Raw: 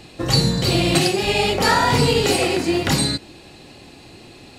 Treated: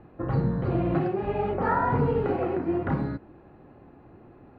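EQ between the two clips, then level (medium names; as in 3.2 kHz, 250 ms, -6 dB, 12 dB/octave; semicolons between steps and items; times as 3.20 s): Chebyshev low-pass 1.4 kHz, order 3; -6.0 dB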